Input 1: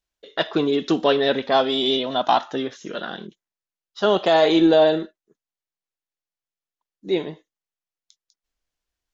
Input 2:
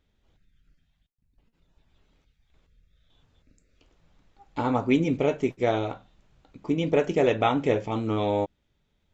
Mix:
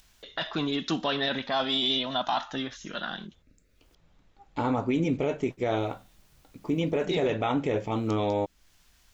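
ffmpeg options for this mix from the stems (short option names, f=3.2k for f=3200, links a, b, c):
-filter_complex "[0:a]equalizer=f=430:t=o:w=0.97:g=-13,acompressor=mode=upward:threshold=-40dB:ratio=2.5,volume=-1dB,asplit=3[a][b][c];[a]atrim=end=3.95,asetpts=PTS-STARTPTS,afade=t=out:st=3.946:d=0.004:c=hsin[d];[b]atrim=start=3.95:end=5.35,asetpts=PTS-STARTPTS,volume=0[e];[c]atrim=start=5.35,asetpts=PTS-STARTPTS,afade=t=in:d=0.004:c=hsin[f];[d][e][f]concat=n=3:v=0:a=1[g];[1:a]volume=-0.5dB[h];[g][h]amix=inputs=2:normalize=0,alimiter=limit=-17.5dB:level=0:latency=1:release=20"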